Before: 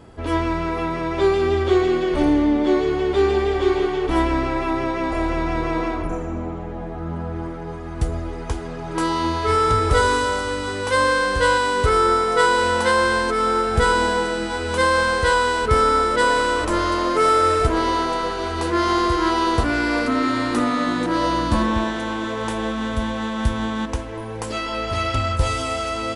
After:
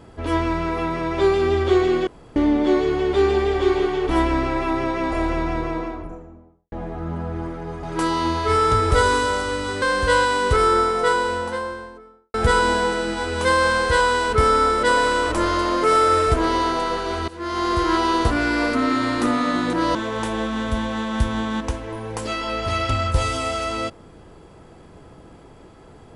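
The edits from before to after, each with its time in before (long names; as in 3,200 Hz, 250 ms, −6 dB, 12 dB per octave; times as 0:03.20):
0:02.07–0:02.36: fill with room tone
0:05.21–0:06.72: fade out and dull
0:07.83–0:08.82: remove
0:10.81–0:11.15: remove
0:11.96–0:13.67: fade out and dull
0:18.61–0:19.16: fade in, from −21.5 dB
0:21.28–0:22.20: remove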